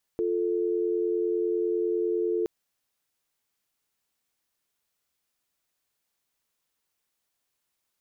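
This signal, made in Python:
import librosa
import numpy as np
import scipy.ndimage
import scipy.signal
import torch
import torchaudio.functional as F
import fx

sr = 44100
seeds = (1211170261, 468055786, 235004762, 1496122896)

y = fx.call_progress(sr, length_s=2.27, kind='dial tone', level_db=-26.5)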